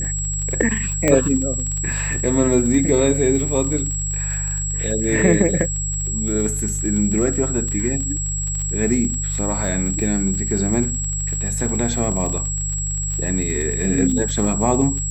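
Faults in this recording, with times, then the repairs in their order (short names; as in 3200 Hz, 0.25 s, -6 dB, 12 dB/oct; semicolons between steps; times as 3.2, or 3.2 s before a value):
crackle 44/s -25 dBFS
hum 50 Hz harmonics 3 -26 dBFS
tone 7700 Hz -24 dBFS
1.08 pop -4 dBFS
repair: de-click; de-hum 50 Hz, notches 3; notch 7700 Hz, Q 30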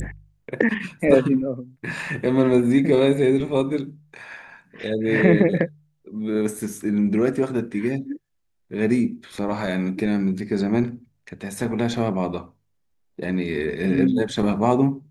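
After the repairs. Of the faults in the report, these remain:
none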